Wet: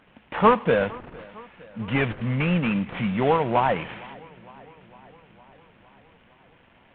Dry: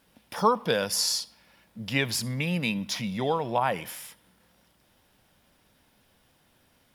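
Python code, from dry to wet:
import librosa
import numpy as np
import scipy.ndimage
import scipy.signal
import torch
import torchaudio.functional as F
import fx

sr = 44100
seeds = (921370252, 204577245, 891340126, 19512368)

y = fx.cvsd(x, sr, bps=16000)
y = fx.echo_warbled(y, sr, ms=458, feedback_pct=67, rate_hz=2.8, cents=54, wet_db=-23.0)
y = F.gain(torch.from_numpy(y), 7.0).numpy()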